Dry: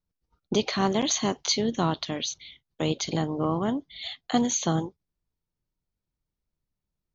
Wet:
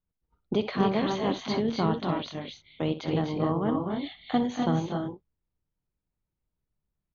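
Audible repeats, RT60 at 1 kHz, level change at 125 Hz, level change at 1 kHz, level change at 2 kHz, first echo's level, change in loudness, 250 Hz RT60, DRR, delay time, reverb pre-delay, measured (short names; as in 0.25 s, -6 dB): 2, none, +0.5 dB, -0.5 dB, -2.0 dB, -13.5 dB, -1.5 dB, none, none, 61 ms, none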